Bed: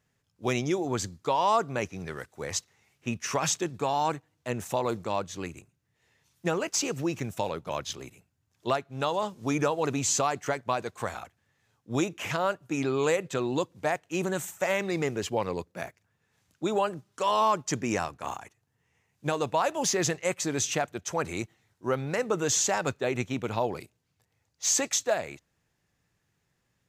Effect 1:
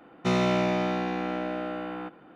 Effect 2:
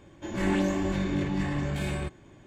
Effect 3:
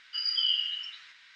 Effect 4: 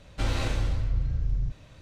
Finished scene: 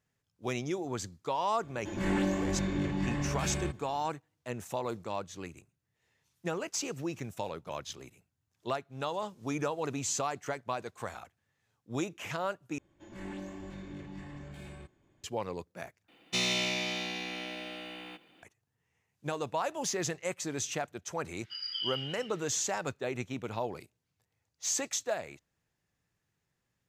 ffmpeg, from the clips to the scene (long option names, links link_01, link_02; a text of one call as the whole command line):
ffmpeg -i bed.wav -i cue0.wav -i cue1.wav -i cue2.wav -filter_complex "[2:a]asplit=2[link_01][link_02];[0:a]volume=-6.5dB[link_03];[1:a]aexciter=amount=7.7:drive=6.5:freq=2100[link_04];[link_03]asplit=3[link_05][link_06][link_07];[link_05]atrim=end=12.784[link_08];[link_02]atrim=end=2.46,asetpts=PTS-STARTPTS,volume=-16dB[link_09];[link_06]atrim=start=15.236:end=16.084[link_10];[link_04]atrim=end=2.35,asetpts=PTS-STARTPTS,volume=-12.5dB[link_11];[link_07]atrim=start=18.426[link_12];[link_01]atrim=end=2.46,asetpts=PTS-STARTPTS,volume=-3.5dB,afade=type=in:duration=0.004:curve=hsin,afade=type=out:start_time=2.456:duration=0.004:curve=hsin,adelay=1630[link_13];[3:a]atrim=end=1.35,asetpts=PTS-STARTPTS,volume=-8.5dB,afade=type=in:duration=0.004:curve=hsin,afade=type=out:start_time=1.346:duration=0.004:curve=hsin,adelay=21370[link_14];[link_08][link_09]acrossfade=duration=0.004:curve1=hsin:curve2=hsin[link_15];[link_15][link_10]acrossfade=duration=0.004:curve1=hsin:curve2=hsin[link_16];[link_16][link_11]acrossfade=duration=0.004:curve1=hsin:curve2=hsin[link_17];[link_17][link_12]acrossfade=duration=0.004:curve1=hsin:curve2=hsin[link_18];[link_18][link_13][link_14]amix=inputs=3:normalize=0" out.wav